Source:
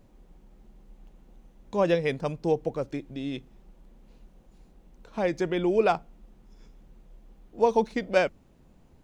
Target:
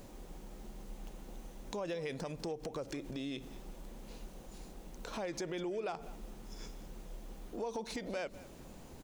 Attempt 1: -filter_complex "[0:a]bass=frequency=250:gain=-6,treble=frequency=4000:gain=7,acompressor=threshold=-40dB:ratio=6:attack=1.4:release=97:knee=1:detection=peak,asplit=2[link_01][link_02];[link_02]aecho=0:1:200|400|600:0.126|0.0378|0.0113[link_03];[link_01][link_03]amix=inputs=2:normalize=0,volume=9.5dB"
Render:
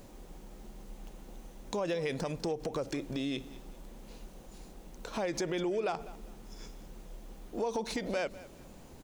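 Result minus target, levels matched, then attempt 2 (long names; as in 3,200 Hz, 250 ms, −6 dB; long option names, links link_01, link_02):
downward compressor: peak gain reduction −6 dB
-filter_complex "[0:a]bass=frequency=250:gain=-6,treble=frequency=4000:gain=7,acompressor=threshold=-47dB:ratio=6:attack=1.4:release=97:knee=1:detection=peak,asplit=2[link_01][link_02];[link_02]aecho=0:1:200|400|600:0.126|0.0378|0.0113[link_03];[link_01][link_03]amix=inputs=2:normalize=0,volume=9.5dB"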